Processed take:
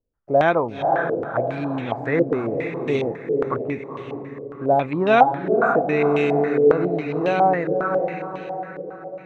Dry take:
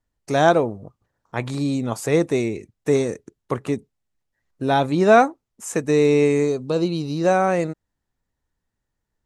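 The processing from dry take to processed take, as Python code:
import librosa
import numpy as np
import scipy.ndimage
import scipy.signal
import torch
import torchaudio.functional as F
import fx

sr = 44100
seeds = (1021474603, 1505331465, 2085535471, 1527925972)

y = fx.echo_diffused(x, sr, ms=503, feedback_pct=50, wet_db=-5.0)
y = fx.filter_held_lowpass(y, sr, hz=7.3, low_hz=480.0, high_hz=3000.0)
y = y * librosa.db_to_amplitude(-4.5)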